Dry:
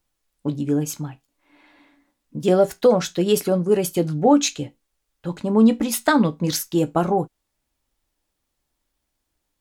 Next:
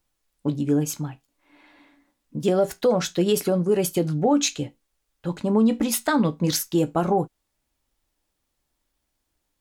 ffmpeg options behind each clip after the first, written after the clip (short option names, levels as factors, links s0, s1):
-af "alimiter=limit=0.266:level=0:latency=1:release=79"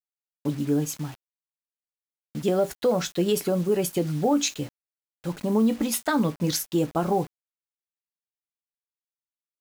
-af "acrusher=bits=6:mix=0:aa=0.000001,volume=0.75"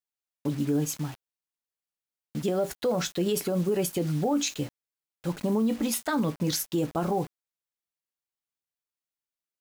-af "alimiter=limit=0.119:level=0:latency=1:release=38"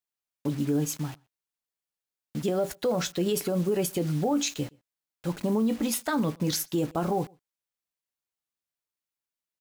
-filter_complex "[0:a]asplit=2[s0][s1];[s1]adelay=122.4,volume=0.0398,highshelf=f=4000:g=-2.76[s2];[s0][s2]amix=inputs=2:normalize=0"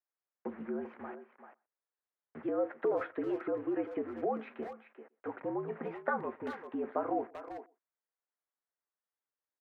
-filter_complex "[0:a]acompressor=threshold=0.0447:ratio=2.5,highpass=f=400:t=q:w=0.5412,highpass=f=400:t=q:w=1.307,lowpass=f=2000:t=q:w=0.5176,lowpass=f=2000:t=q:w=0.7071,lowpass=f=2000:t=q:w=1.932,afreqshift=-65,asplit=2[s0][s1];[s1]adelay=390,highpass=300,lowpass=3400,asoftclip=type=hard:threshold=0.0316,volume=0.355[s2];[s0][s2]amix=inputs=2:normalize=0"